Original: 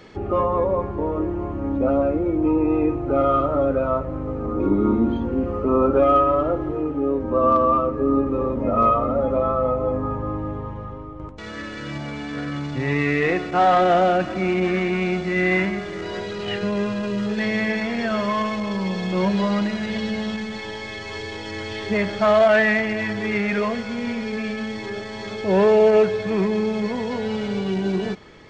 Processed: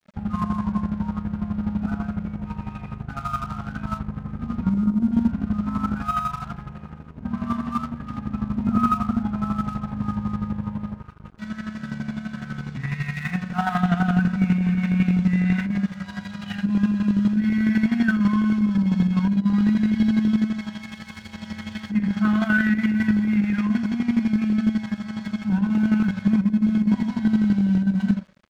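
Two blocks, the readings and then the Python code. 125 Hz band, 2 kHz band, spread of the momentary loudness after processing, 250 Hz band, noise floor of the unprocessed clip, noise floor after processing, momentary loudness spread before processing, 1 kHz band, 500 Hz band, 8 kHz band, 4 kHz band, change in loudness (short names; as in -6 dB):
+3.5 dB, -4.5 dB, 13 LU, +3.0 dB, -33 dBFS, -40 dBFS, 14 LU, -8.0 dB, -22.5 dB, n/a, -8.0 dB, -1.5 dB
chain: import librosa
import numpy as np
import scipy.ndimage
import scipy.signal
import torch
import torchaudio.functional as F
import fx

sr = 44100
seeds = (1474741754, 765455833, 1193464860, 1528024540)

p1 = fx.low_shelf(x, sr, hz=72.0, db=5.0)
p2 = 10.0 ** (-15.0 / 20.0) * np.tanh(p1 / 10.0 ** (-15.0 / 20.0))
p3 = p1 + (p2 * 10.0 ** (-7.0 / 20.0))
p4 = scipy.signal.sosfilt(scipy.signal.ellip(3, 1.0, 40, [220.0, 790.0], 'bandstop', fs=sr, output='sos'), p3)
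p5 = fx.notch_comb(p4, sr, f0_hz=290.0)
p6 = fx.small_body(p5, sr, hz=(210.0, 1500.0), ring_ms=45, db=16)
p7 = fx.spec_box(p6, sr, start_s=6.98, length_s=0.27, low_hz=510.0, high_hz=2100.0, gain_db=-9)
p8 = fx.comb_fb(p7, sr, f0_hz=180.0, decay_s=0.88, harmonics='all', damping=0.0, mix_pct=50)
p9 = fx.echo_feedback(p8, sr, ms=104, feedback_pct=39, wet_db=-20.0)
p10 = fx.rev_schroeder(p9, sr, rt60_s=0.42, comb_ms=30, drr_db=10.0)
p11 = np.sign(p10) * np.maximum(np.abs(p10) - 10.0 ** (-39.5 / 20.0), 0.0)
p12 = fx.chopper(p11, sr, hz=12.0, depth_pct=60, duty_pct=30)
y = fx.over_compress(p12, sr, threshold_db=-17.0, ratio=-0.5)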